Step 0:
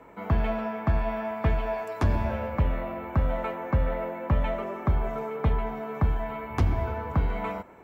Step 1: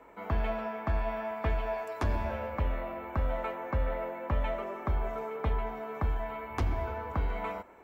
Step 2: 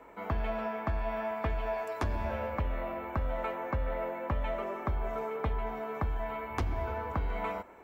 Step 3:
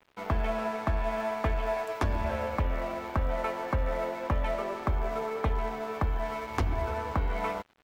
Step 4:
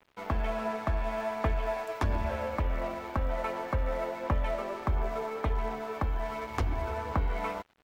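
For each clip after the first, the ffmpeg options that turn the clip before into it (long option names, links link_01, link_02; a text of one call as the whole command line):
ffmpeg -i in.wav -af "equalizer=frequency=140:width=0.95:gain=-9.5,volume=-3dB" out.wav
ffmpeg -i in.wav -af "acompressor=threshold=-29dB:ratio=6,volume=1.5dB" out.wav
ffmpeg -i in.wav -af "aeval=exprs='sgn(val(0))*max(abs(val(0))-0.00376,0)':channel_layout=same,volume=4.5dB" out.wav
ffmpeg -i in.wav -af "aphaser=in_gain=1:out_gain=1:delay=3.8:decay=0.22:speed=1.4:type=sinusoidal,volume=-2dB" out.wav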